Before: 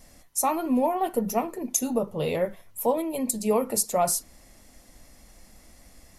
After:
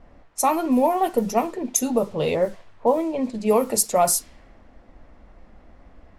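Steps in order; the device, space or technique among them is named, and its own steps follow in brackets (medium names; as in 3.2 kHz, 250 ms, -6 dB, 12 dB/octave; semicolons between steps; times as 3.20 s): 2.34–3.33 s: low-pass 1.5 kHz -> 2.5 kHz 12 dB/octave; peaking EQ 160 Hz -3 dB 0.94 oct; cassette deck with a dynamic noise filter (white noise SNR 28 dB; level-controlled noise filter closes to 1.1 kHz, open at -21 dBFS); trim +5 dB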